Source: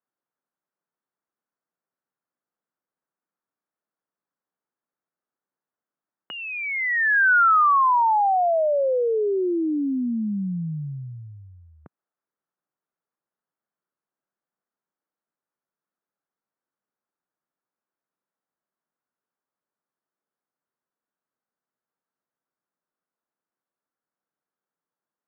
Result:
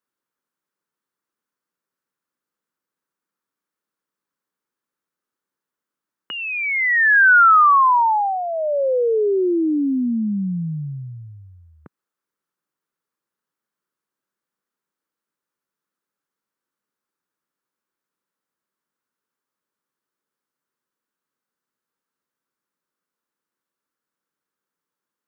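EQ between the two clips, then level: bass shelf 120 Hz -7 dB; peaking EQ 700 Hz -10.5 dB 0.5 oct; +6.0 dB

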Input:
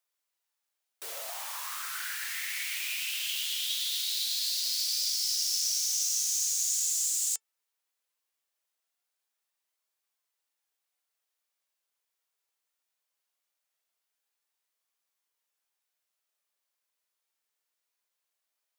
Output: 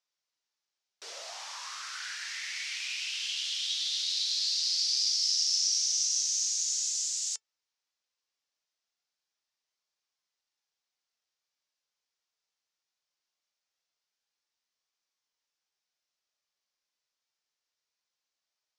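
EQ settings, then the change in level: four-pole ladder low-pass 6.5 kHz, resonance 45%; +6.0 dB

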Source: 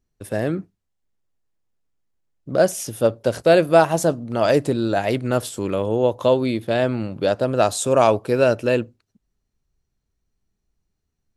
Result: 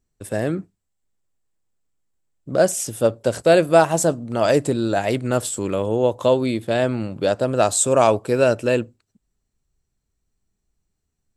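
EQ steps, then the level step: peaking EQ 7.8 kHz +11.5 dB 0.25 oct; 0.0 dB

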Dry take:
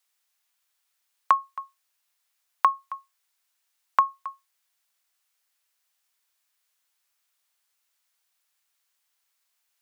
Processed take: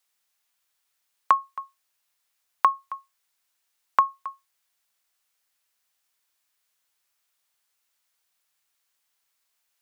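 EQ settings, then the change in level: bass shelf 280 Hz +10 dB; 0.0 dB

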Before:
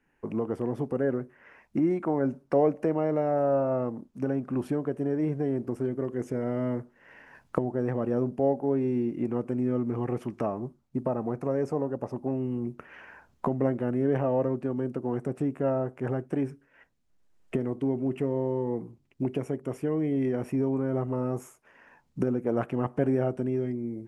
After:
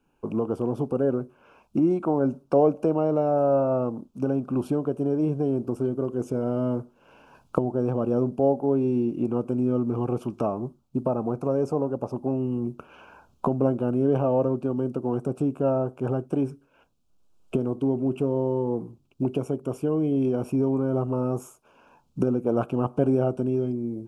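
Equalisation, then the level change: Butterworth band-stop 1.9 kHz, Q 1.8; +3.5 dB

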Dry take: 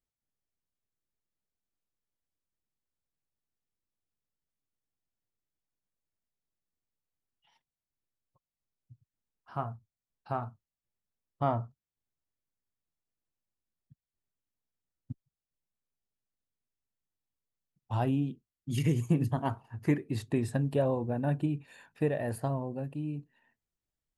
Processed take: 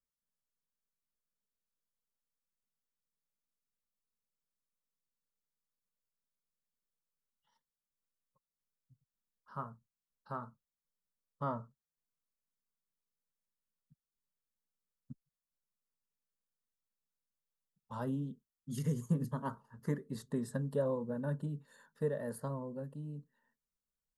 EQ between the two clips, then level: static phaser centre 490 Hz, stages 8; -3.0 dB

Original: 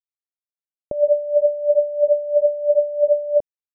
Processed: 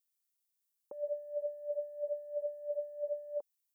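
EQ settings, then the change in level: high-pass 500 Hz 6 dB/octave; Butterworth band-stop 660 Hz, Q 3.1; differentiator; +10.0 dB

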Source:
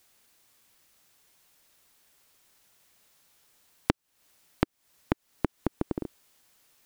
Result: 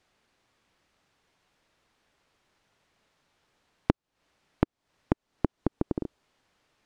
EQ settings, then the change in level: tape spacing loss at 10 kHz 22 dB; dynamic bell 2 kHz, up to -4 dB, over -59 dBFS, Q 0.83; +2.5 dB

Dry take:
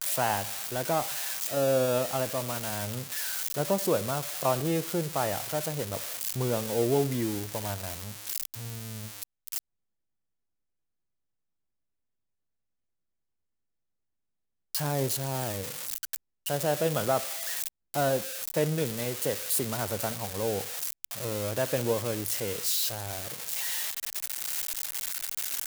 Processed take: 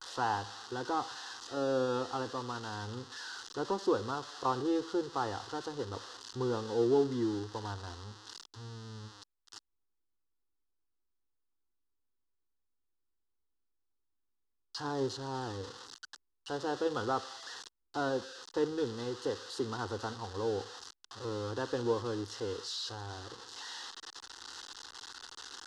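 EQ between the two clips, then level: low-pass 4.8 kHz 24 dB/octave; static phaser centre 620 Hz, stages 6; 0.0 dB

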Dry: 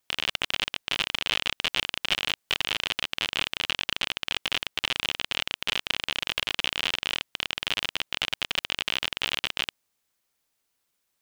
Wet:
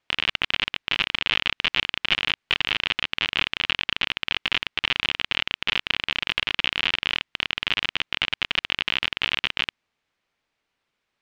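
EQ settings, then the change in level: low-pass 3.3 kHz 12 dB/octave; dynamic bell 580 Hz, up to -6 dB, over -51 dBFS, Q 1.3; peaking EQ 2.3 kHz +2.5 dB 0.77 oct; +4.5 dB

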